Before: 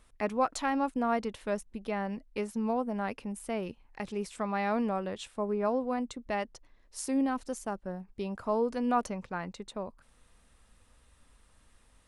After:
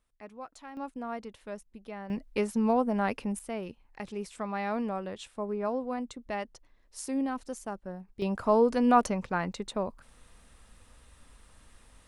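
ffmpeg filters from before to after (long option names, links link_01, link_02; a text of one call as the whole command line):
ffmpeg -i in.wav -af "asetnsamples=nb_out_samples=441:pad=0,asendcmd='0.77 volume volume -8dB;2.1 volume volume 5dB;3.39 volume volume -2dB;8.22 volume volume 6dB',volume=-15.5dB" out.wav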